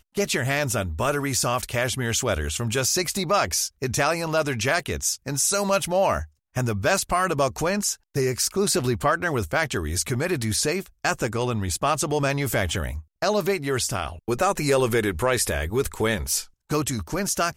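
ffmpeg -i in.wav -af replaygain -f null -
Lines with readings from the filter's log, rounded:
track_gain = +5.2 dB
track_peak = 0.283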